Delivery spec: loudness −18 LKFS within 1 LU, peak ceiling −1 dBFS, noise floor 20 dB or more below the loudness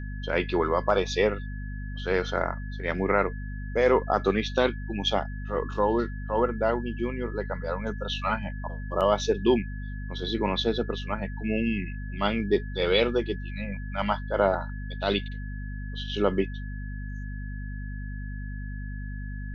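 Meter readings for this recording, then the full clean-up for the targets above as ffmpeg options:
mains hum 50 Hz; hum harmonics up to 250 Hz; level of the hum −32 dBFS; interfering tone 1,700 Hz; level of the tone −45 dBFS; integrated loudness −28.5 LKFS; sample peak −9.5 dBFS; target loudness −18.0 LKFS
→ -af "bandreject=frequency=50:width_type=h:width=4,bandreject=frequency=100:width_type=h:width=4,bandreject=frequency=150:width_type=h:width=4,bandreject=frequency=200:width_type=h:width=4,bandreject=frequency=250:width_type=h:width=4"
-af "bandreject=frequency=1700:width=30"
-af "volume=10.5dB,alimiter=limit=-1dB:level=0:latency=1"

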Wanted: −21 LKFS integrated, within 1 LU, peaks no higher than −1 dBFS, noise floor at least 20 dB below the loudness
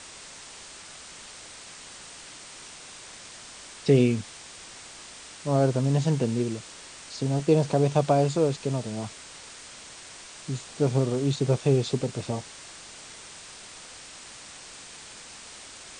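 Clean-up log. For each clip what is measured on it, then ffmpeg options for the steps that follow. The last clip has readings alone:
background noise floor −45 dBFS; target noise floor −46 dBFS; integrated loudness −25.5 LKFS; sample peak −7.0 dBFS; target loudness −21.0 LKFS
→ -af "afftdn=noise_reduction=6:noise_floor=-45"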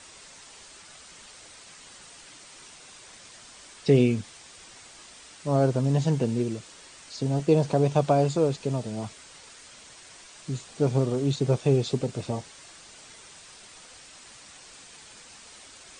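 background noise floor −49 dBFS; integrated loudness −25.5 LKFS; sample peak −7.5 dBFS; target loudness −21.0 LKFS
→ -af "volume=4.5dB"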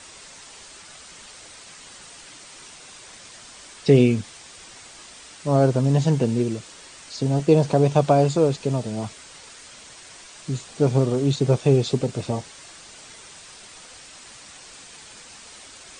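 integrated loudness −21.0 LKFS; sample peak −3.0 dBFS; background noise floor −45 dBFS

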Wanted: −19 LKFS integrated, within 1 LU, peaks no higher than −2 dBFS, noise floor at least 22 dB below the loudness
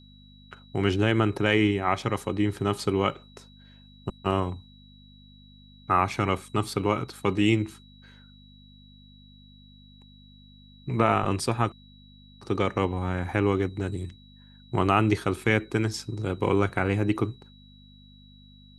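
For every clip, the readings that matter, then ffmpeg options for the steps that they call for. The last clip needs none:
mains hum 50 Hz; hum harmonics up to 250 Hz; level of the hum −52 dBFS; interfering tone 3,900 Hz; level of the tone −56 dBFS; integrated loudness −26.5 LKFS; sample peak −6.0 dBFS; target loudness −19.0 LKFS
→ -af "bandreject=frequency=50:width_type=h:width=4,bandreject=frequency=100:width_type=h:width=4,bandreject=frequency=150:width_type=h:width=4,bandreject=frequency=200:width_type=h:width=4,bandreject=frequency=250:width_type=h:width=4"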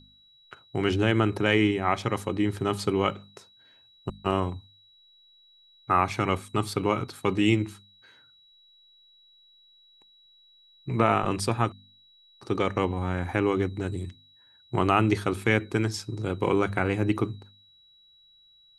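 mains hum none found; interfering tone 3,900 Hz; level of the tone −56 dBFS
→ -af "bandreject=frequency=3900:width=30"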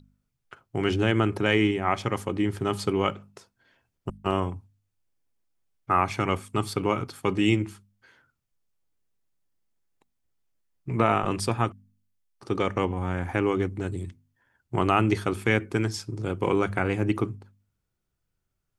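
interfering tone none found; integrated loudness −26.5 LKFS; sample peak −6.0 dBFS; target loudness −19.0 LKFS
→ -af "volume=7.5dB,alimiter=limit=-2dB:level=0:latency=1"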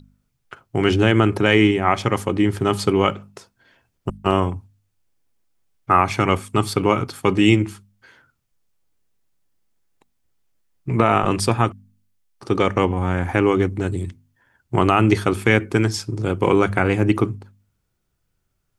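integrated loudness −19.5 LKFS; sample peak −2.0 dBFS; background noise floor −72 dBFS

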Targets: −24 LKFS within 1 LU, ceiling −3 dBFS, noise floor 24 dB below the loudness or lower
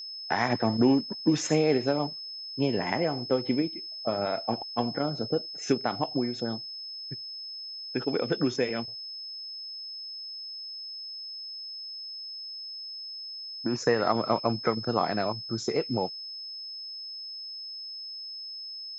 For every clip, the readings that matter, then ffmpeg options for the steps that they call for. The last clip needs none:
interfering tone 5,200 Hz; level of the tone −37 dBFS; integrated loudness −30.5 LKFS; sample peak −10.0 dBFS; target loudness −24.0 LKFS
→ -af "bandreject=frequency=5200:width=30"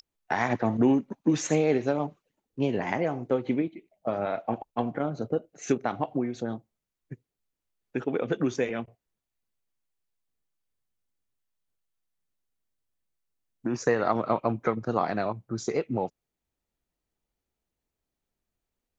interfering tone none found; integrated loudness −29.0 LKFS; sample peak −10.5 dBFS; target loudness −24.0 LKFS
→ -af "volume=5dB"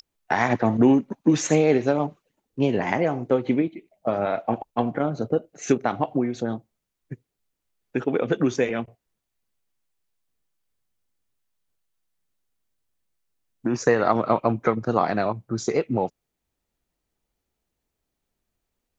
integrated loudness −24.0 LKFS; sample peak −5.5 dBFS; background noise floor −82 dBFS

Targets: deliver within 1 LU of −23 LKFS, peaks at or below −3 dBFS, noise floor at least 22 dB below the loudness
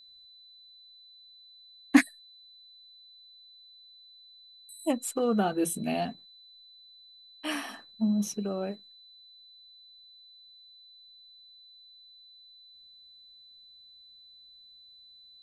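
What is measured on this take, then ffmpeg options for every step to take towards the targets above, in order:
interfering tone 4,000 Hz; level of the tone −52 dBFS; integrated loudness −29.5 LKFS; sample peak −7.5 dBFS; target loudness −23.0 LKFS
→ -af "bandreject=frequency=4000:width=30"
-af "volume=6.5dB,alimiter=limit=-3dB:level=0:latency=1"

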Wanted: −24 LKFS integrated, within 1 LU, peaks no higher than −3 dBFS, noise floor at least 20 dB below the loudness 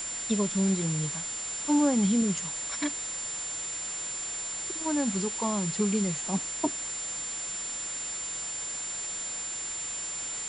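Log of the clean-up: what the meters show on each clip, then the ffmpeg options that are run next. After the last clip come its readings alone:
interfering tone 7,200 Hz; level of the tone −33 dBFS; background noise floor −35 dBFS; target noise floor −50 dBFS; integrated loudness −29.5 LKFS; sample peak −13.5 dBFS; target loudness −24.0 LKFS
→ -af "bandreject=frequency=7200:width=30"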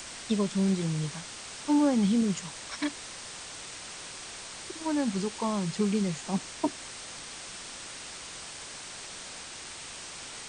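interfering tone none found; background noise floor −43 dBFS; target noise floor −52 dBFS
→ -af "afftdn=noise_reduction=9:noise_floor=-43"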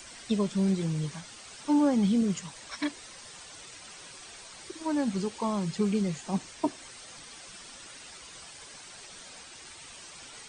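background noise floor −48 dBFS; target noise floor −50 dBFS
→ -af "afftdn=noise_reduction=6:noise_floor=-48"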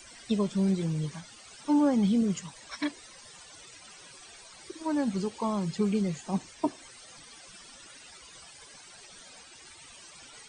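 background noise floor −51 dBFS; integrated loudness −29.5 LKFS; sample peak −14.5 dBFS; target loudness −24.0 LKFS
→ -af "volume=5.5dB"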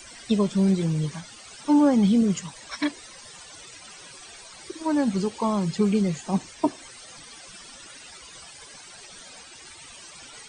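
integrated loudness −24.0 LKFS; sample peak −9.0 dBFS; background noise floor −46 dBFS

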